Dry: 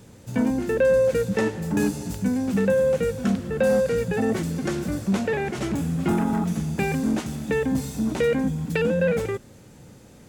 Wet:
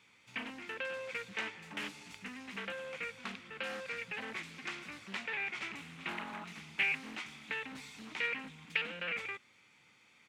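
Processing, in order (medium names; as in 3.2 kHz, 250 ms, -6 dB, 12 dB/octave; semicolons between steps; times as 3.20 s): band-pass filter 2.4 kHz, Q 2.4; comb 0.9 ms, depth 46%; loudspeaker Doppler distortion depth 0.33 ms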